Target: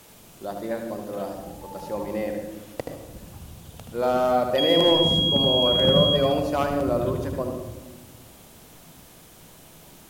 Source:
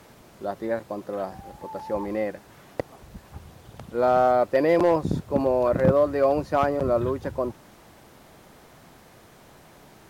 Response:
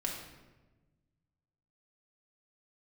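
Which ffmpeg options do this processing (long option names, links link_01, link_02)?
-filter_complex "[0:a]asettb=1/sr,asplit=3[link_01][link_02][link_03];[link_01]atrim=end=4.584[link_04];[link_02]atrim=start=4.58:end=6.16,asetpts=PTS-STARTPTS,afade=type=in:duration=0.004:curve=qsin,afade=type=out:start_time=1.576:duration=0.004:curve=qsin,aeval=exprs='val(0)+0.0501*sin(2*PI*3300*n/s)':channel_layout=same[link_05];[link_03]atrim=start=6.156[link_06];[link_04][link_05]acrossfade=duration=0.004:curve1=hsin:curve2=qsin[link_07];[link_07][link_06]acrossfade=duration=0.004:curve1=qsin:curve2=hsin,aexciter=amount=1.5:drive=8.4:freq=2600,asplit=2[link_08][link_09];[1:a]atrim=start_sample=2205,lowshelf=frequency=410:gain=8,adelay=76[link_10];[link_09][link_10]afir=irnorm=-1:irlink=0,volume=-8dB[link_11];[link_08][link_11]amix=inputs=2:normalize=0,volume=-3dB"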